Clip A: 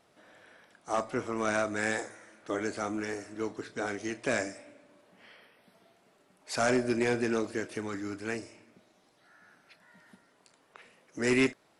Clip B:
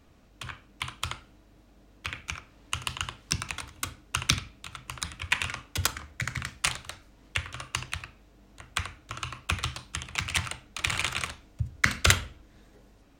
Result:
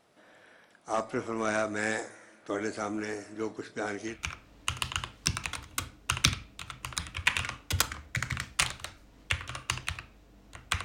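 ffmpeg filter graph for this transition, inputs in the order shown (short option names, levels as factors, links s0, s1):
-filter_complex "[0:a]apad=whole_dur=10.84,atrim=end=10.84,atrim=end=4.22,asetpts=PTS-STARTPTS[s0];[1:a]atrim=start=2.09:end=8.89,asetpts=PTS-STARTPTS[s1];[s0][s1]acrossfade=d=0.18:c1=tri:c2=tri"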